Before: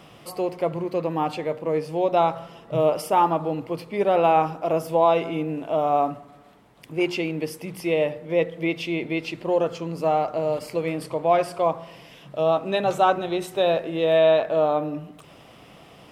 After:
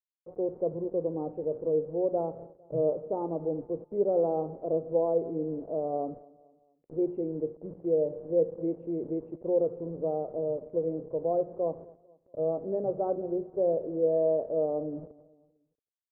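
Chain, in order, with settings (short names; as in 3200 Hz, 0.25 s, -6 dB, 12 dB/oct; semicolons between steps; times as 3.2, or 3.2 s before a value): requantised 6-bit, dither none; ladder low-pass 560 Hz, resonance 50%; feedback echo 0.226 s, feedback 45%, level -22.5 dB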